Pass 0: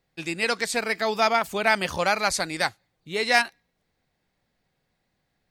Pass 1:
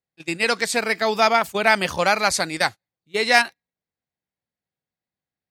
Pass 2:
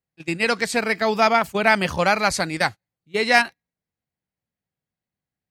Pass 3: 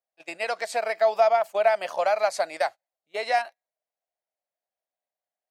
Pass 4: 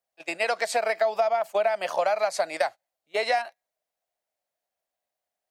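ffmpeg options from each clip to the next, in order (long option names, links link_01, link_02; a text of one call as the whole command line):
ffmpeg -i in.wav -af "agate=range=-21dB:threshold=-31dB:ratio=16:detection=peak,highpass=63,volume=4dB" out.wav
ffmpeg -i in.wav -af "bass=frequency=250:gain=6,treble=frequency=4000:gain=-4,bandreject=frequency=3600:width=19" out.wav
ffmpeg -i in.wav -af "acompressor=threshold=-21dB:ratio=3,highpass=frequency=640:width_type=q:width=6.1,volume=-7dB" out.wav
ffmpeg -i in.wav -filter_complex "[0:a]acrossover=split=220[link_01][link_02];[link_02]acompressor=threshold=-26dB:ratio=6[link_03];[link_01][link_03]amix=inputs=2:normalize=0,volume=5dB" out.wav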